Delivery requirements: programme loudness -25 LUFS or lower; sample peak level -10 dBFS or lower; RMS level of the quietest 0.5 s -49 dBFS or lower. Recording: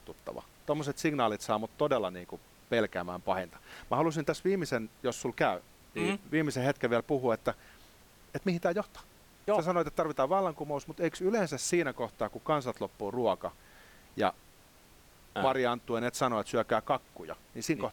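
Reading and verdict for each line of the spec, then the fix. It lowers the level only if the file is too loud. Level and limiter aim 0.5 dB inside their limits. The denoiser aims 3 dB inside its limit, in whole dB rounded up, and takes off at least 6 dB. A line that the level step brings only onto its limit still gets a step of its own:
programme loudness -32.0 LUFS: pass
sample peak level -12.5 dBFS: pass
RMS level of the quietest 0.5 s -59 dBFS: pass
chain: none needed

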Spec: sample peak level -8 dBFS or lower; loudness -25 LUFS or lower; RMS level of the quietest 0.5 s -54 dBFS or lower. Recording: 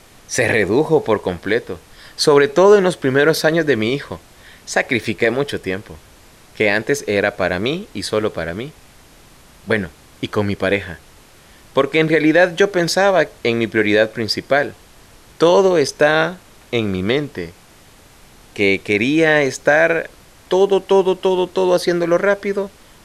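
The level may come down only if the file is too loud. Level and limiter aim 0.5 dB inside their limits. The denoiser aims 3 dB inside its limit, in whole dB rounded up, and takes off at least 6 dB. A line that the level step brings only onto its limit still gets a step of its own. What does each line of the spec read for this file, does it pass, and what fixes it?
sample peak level -2.5 dBFS: fail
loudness -16.5 LUFS: fail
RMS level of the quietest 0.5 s -46 dBFS: fail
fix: trim -9 dB

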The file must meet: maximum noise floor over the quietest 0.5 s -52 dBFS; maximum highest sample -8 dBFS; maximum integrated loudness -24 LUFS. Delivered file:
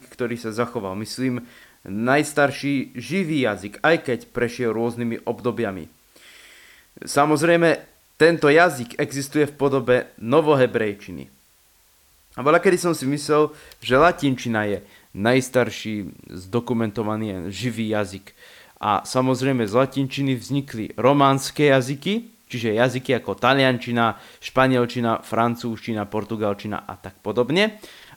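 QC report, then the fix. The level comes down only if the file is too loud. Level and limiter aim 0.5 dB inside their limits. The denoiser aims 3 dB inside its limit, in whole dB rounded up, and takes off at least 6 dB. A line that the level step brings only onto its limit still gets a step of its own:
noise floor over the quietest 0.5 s -58 dBFS: pass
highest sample -3.0 dBFS: fail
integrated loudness -21.5 LUFS: fail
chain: trim -3 dB; peak limiter -8.5 dBFS

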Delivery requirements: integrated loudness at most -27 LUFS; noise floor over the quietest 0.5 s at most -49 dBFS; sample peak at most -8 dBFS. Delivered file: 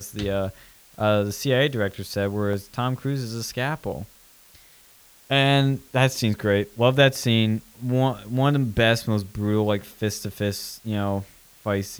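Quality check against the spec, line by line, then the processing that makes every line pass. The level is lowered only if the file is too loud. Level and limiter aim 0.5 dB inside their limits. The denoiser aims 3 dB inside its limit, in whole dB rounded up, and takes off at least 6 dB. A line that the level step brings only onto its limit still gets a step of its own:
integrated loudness -23.5 LUFS: fail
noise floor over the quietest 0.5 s -53 dBFS: pass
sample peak -3.5 dBFS: fail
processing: trim -4 dB; peak limiter -8.5 dBFS

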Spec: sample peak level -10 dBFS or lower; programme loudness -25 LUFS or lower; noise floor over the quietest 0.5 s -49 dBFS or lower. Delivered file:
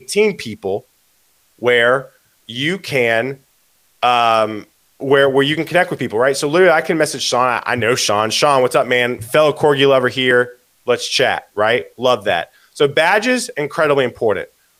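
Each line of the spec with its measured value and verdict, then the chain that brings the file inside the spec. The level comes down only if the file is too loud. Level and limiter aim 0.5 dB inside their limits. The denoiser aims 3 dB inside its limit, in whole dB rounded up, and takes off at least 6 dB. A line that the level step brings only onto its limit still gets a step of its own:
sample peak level -2.0 dBFS: fail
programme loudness -15.5 LUFS: fail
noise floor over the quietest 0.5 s -58 dBFS: pass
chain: trim -10 dB

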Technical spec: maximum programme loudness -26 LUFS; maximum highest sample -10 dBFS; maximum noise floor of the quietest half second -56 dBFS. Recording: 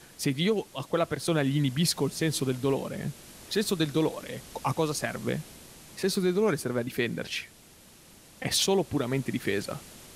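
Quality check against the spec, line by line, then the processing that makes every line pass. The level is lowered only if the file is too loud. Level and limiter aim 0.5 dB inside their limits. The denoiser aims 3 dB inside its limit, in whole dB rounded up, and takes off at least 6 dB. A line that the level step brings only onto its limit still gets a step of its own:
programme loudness -29.0 LUFS: pass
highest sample -12.5 dBFS: pass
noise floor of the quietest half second -54 dBFS: fail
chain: noise reduction 6 dB, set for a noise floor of -54 dBFS

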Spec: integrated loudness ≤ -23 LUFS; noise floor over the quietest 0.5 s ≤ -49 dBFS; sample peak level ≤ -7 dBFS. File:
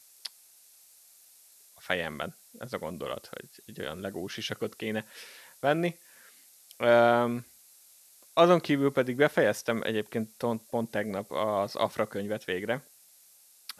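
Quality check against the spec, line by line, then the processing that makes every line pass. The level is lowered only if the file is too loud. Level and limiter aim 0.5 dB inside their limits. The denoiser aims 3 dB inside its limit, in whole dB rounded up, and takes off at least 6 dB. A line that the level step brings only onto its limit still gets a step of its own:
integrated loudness -29.0 LUFS: pass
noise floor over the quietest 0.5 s -59 dBFS: pass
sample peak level -8.5 dBFS: pass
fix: none needed

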